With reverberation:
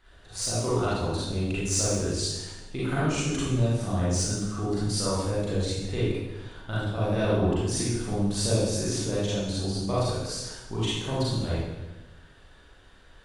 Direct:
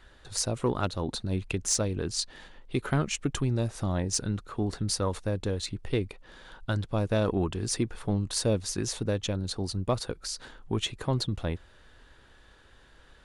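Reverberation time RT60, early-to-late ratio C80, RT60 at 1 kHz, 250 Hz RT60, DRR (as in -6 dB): 1.1 s, 1.0 dB, 1.0 s, 1.3 s, -9.5 dB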